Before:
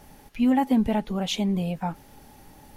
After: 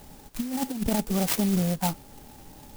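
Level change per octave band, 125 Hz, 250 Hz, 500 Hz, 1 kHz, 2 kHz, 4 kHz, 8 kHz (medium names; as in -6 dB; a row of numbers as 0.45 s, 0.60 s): +1.5 dB, -3.5 dB, -1.5 dB, -4.5 dB, -0.5 dB, -2.5 dB, +9.0 dB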